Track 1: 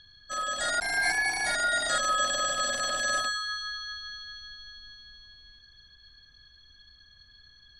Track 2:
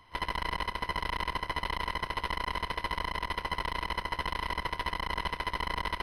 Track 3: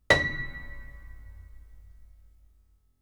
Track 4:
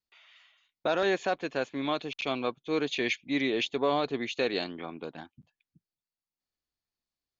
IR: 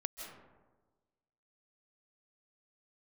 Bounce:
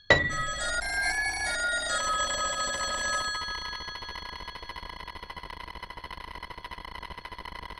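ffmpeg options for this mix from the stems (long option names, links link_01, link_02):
-filter_complex "[0:a]volume=-3.5dB,asplit=2[link_01][link_02];[link_02]volume=-12dB[link_03];[1:a]acrossover=split=690[link_04][link_05];[link_04]aeval=exprs='val(0)*(1-0.5/2+0.5/2*cos(2*PI*9.7*n/s))':channel_layout=same[link_06];[link_05]aeval=exprs='val(0)*(1-0.5/2-0.5/2*cos(2*PI*9.7*n/s))':channel_layout=same[link_07];[link_06][link_07]amix=inputs=2:normalize=0,adelay=1850,volume=-5dB[link_08];[2:a]afwtdn=0.00891,volume=0.5dB[link_09];[4:a]atrim=start_sample=2205[link_10];[link_03][link_10]afir=irnorm=-1:irlink=0[link_11];[link_01][link_08][link_09][link_11]amix=inputs=4:normalize=0"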